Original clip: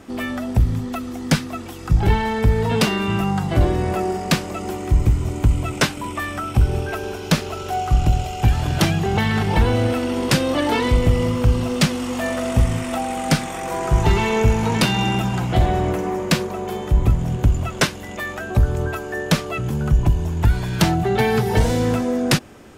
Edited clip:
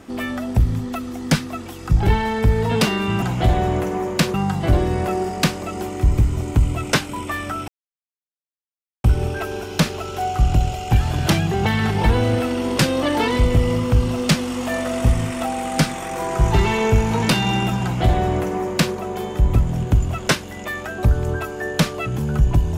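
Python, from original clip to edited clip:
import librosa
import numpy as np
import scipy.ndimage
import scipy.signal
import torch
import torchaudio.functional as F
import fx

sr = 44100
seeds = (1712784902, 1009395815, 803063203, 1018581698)

y = fx.edit(x, sr, fx.insert_silence(at_s=6.56, length_s=1.36),
    fx.duplicate(start_s=15.34, length_s=1.12, to_s=3.22), tone=tone)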